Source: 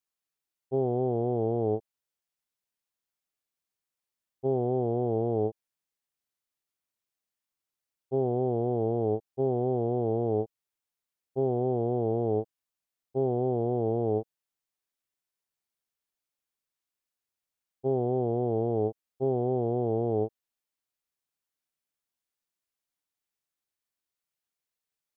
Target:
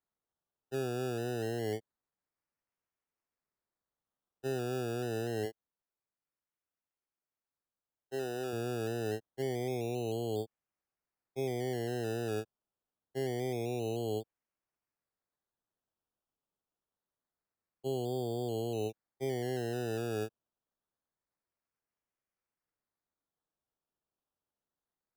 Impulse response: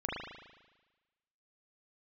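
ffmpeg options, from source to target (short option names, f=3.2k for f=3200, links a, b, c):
-filter_complex "[0:a]asettb=1/sr,asplit=3[a][b][c];[a]atrim=end=5.454[d];[b]atrim=start=5.45:end=8.53,asetpts=PTS-STARTPTS,afade=t=in:d=0.004:c=qsin,afade=t=out:st=3.076:d=0.004:c=qsin,bass=f=250:g=-9,treble=f=4k:g=-6[e];[c]atrim=start=8.526[f];[d][e]acrossfade=d=0.004:c1=hsin:c2=qsin[g];[g][f]acrossfade=d=0.004:c1=qsin:c2=hsin,acrossover=split=200|410[h][i][j];[j]acrusher=samples=16:mix=1:aa=0.000001:lfo=1:lforange=9.6:lforate=0.26[k];[h][i][k]amix=inputs=3:normalize=0,volume=-7.5dB"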